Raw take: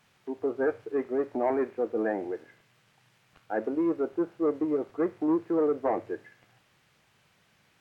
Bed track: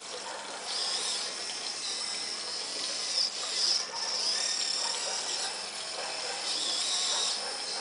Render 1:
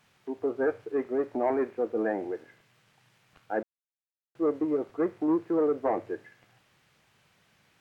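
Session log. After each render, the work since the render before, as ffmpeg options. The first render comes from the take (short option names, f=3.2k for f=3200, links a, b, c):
-filter_complex "[0:a]asplit=3[a][b][c];[a]atrim=end=3.63,asetpts=PTS-STARTPTS,afade=t=out:st=3.626:d=0.004:c=hsin[d];[b]atrim=start=3.63:end=4.35,asetpts=PTS-STARTPTS,volume=0[e];[c]atrim=start=4.35,asetpts=PTS-STARTPTS,afade=t=in:d=0.004:c=hsin[f];[d][e][f]concat=n=3:v=0:a=1"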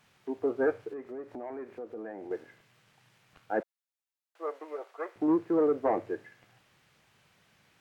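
-filter_complex "[0:a]asettb=1/sr,asplit=3[a][b][c];[a]atrim=end=0.934[d];[b]atrim=start=0.93:end=2.31,asetpts=PTS-STARTPTS,afade=t=in:d=0.004:c=qsin,afade=t=out:st=1.376:d=0.004:c=qsin,acompressor=threshold=-41dB:ratio=3:attack=3.2:release=140:knee=1:detection=peak[e];[c]atrim=start=2.306[f];[d][e]acrossfade=d=0.004:c1=hsin:c2=qsin[g];[g][f]acrossfade=d=0.004:c1=qsin:c2=hsin,asettb=1/sr,asplit=3[h][i][j];[h]atrim=end=3.604[k];[i]atrim=start=3.6:end=5.16,asetpts=PTS-STARTPTS,afade=t=in:d=0.004:c=qsin,afade=t=out:st=1.556:d=0.004:c=qsin,highpass=f=580:w=0.5412,highpass=f=580:w=1.3066[l];[j]atrim=start=5.156[m];[k][l]acrossfade=d=0.004:c1=hsin:c2=qsin[n];[n][m]acrossfade=d=0.004:c1=qsin:c2=hsin"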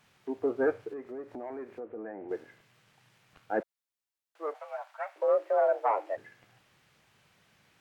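-filter_complex "[0:a]asettb=1/sr,asplit=3[a][b][c];[a]atrim=end=1.804[d];[b]atrim=start=1.8:end=2.29,asetpts=PTS-STARTPTS,afade=t=in:d=0.004:c=qsin,afade=t=out:st=0.486:d=0.004:c=qsin,lowpass=f=2.5k:w=0.5412,lowpass=f=2.5k:w=1.3066[e];[c]atrim=start=2.286[f];[d][e]acrossfade=d=0.004:c1=hsin:c2=qsin[g];[g][f]acrossfade=d=0.004:c1=qsin:c2=hsin,asplit=3[h][i][j];[h]afade=t=out:st=4.53:d=0.02[k];[i]afreqshift=210,afade=t=in:st=4.53:d=0.02,afade=t=out:st=6.16:d=0.02[l];[j]afade=t=in:st=6.16:d=0.02[m];[k][l][m]amix=inputs=3:normalize=0"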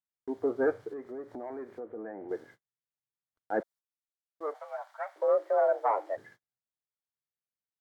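-af "agate=range=-41dB:threshold=-53dB:ratio=16:detection=peak,equalizer=f=2.6k:w=4.4:g=-12.5"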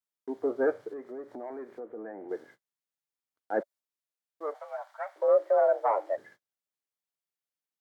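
-af "highpass=180,adynamicequalizer=threshold=0.00794:dfrequency=580:dqfactor=5.8:tfrequency=580:tqfactor=5.8:attack=5:release=100:ratio=0.375:range=3:mode=boostabove:tftype=bell"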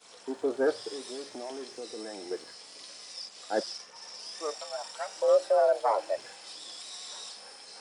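-filter_complex "[1:a]volume=-13dB[a];[0:a][a]amix=inputs=2:normalize=0"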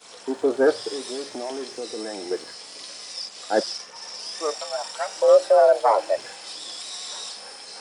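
-af "volume=8dB"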